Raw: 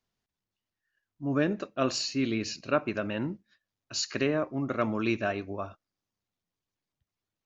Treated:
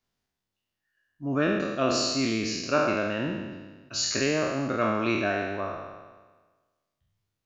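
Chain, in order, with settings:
peak hold with a decay on every bin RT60 1.38 s

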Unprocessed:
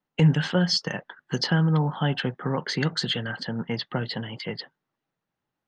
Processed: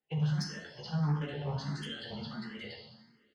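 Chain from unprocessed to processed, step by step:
high-shelf EQ 6,200 Hz −3 dB
mains-hum notches 60/120/180/240 Hz
downward compressor 4 to 1, threshold −24 dBFS, peak gain reduction 9 dB
brickwall limiter −22 dBFS, peak gain reduction 8.5 dB
output level in coarse steps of 15 dB
phase-vocoder stretch with locked phases 0.59×
coupled-rooms reverb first 0.95 s, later 3 s, DRR −1 dB
harmonic generator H 5 −17 dB, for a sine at −19 dBFS
double-tracking delay 14 ms −3.5 dB
frequency shifter mixed with the dry sound +1.5 Hz
level −3.5 dB

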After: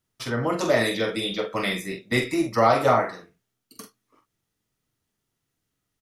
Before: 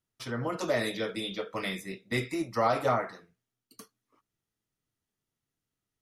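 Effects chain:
double-tracking delay 44 ms −7 dB
level +7 dB

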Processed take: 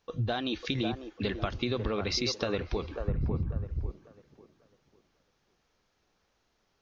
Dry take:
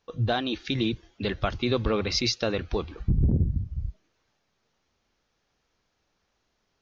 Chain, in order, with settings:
downward compressor, threshold −27 dBFS, peak gain reduction 9 dB
delay with a band-pass on its return 547 ms, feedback 31%, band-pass 690 Hz, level −5 dB

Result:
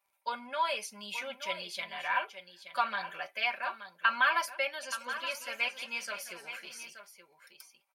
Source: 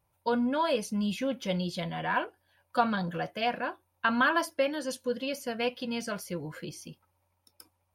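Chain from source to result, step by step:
high-pass filter 870 Hz 12 dB per octave
parametric band 2,300 Hz +9.5 dB 0.26 octaves
comb filter 5.1 ms, depth 67%
surface crackle 16 per second −60 dBFS
single-tap delay 875 ms −11.5 dB
0:04.65–0:06.89: feedback echo with a swinging delay time 178 ms, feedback 56%, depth 150 cents, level −14.5 dB
level −2.5 dB

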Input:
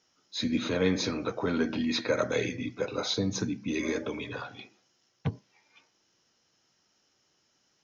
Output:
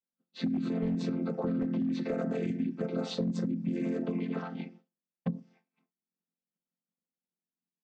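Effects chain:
channel vocoder with a chord as carrier major triad, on F3
parametric band 150 Hz +3 dB 0.34 octaves
gain into a clipping stage and back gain 21.5 dB
brickwall limiter −28 dBFS, peak gain reduction 6.5 dB
low-shelf EQ 410 Hz +9.5 dB
downward expander −54 dBFS
low-pass that shuts in the quiet parts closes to 3,000 Hz, open at −28.5 dBFS
downward compressor, threshold −34 dBFS, peak gain reduction 11 dB
level +5.5 dB

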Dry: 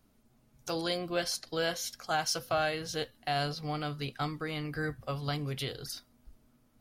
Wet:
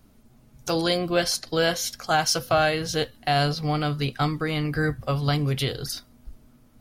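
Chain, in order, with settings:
low-shelf EQ 230 Hz +4.5 dB
level +8.5 dB

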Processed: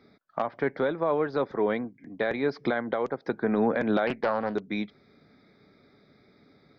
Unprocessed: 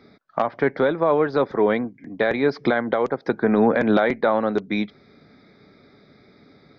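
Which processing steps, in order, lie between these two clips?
0:04.07–0:04.55: highs frequency-modulated by the lows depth 0.32 ms
level −7 dB

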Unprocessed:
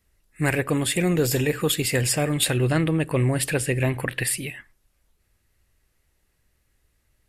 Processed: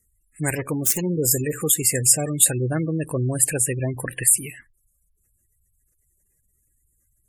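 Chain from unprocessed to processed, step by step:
0:00.55–0:01.10: phase distortion by the signal itself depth 0.24 ms
high shelf with overshoot 5,500 Hz +10 dB, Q 1.5
gate on every frequency bin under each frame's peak −20 dB strong
level −2 dB

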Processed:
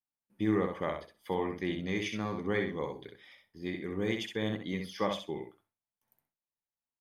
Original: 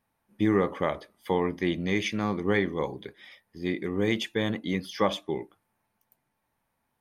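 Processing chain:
noise gate with hold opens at −58 dBFS
repeating echo 65 ms, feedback 15%, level −5.5 dB
level −7 dB

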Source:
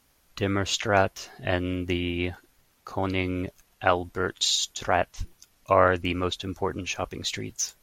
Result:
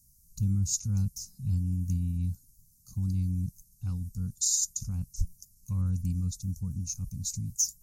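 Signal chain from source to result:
inverse Chebyshev band-stop filter 340–3,400 Hz, stop band 40 dB
level +5 dB

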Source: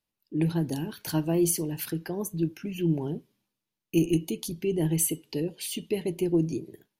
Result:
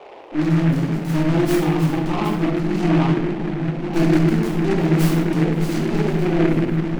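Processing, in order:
lower of the sound and its delayed copy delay 0.36 ms
0:01.61–0:03.04: flat-topped bell 1,000 Hz +13.5 dB 1.1 octaves
echo whose low-pass opens from repeat to repeat 578 ms, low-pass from 200 Hz, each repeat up 1 octave, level −3 dB
convolution reverb RT60 0.95 s, pre-delay 3 ms, DRR −6.5 dB
noise in a band 320–900 Hz −40 dBFS
high-shelf EQ 5,600 Hz −10 dB
short delay modulated by noise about 1,500 Hz, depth 0.076 ms

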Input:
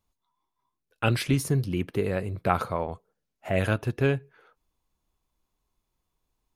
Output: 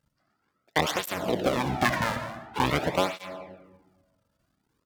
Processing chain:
sub-harmonics by changed cycles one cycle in 2, muted
wrong playback speed 33 rpm record played at 45 rpm
single-tap delay 206 ms −18.5 dB
in parallel at +3 dB: downward compressor, threshold −34 dBFS, peak gain reduction 13.5 dB
on the sum: high-shelf EQ 7,700 Hz −6.5 dB
on a send at −6 dB: convolution reverb RT60 1.3 s, pre-delay 35 ms
on the sum: through-zero flanger with one copy inverted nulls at 0.47 Hz, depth 2.8 ms
level +3.5 dB

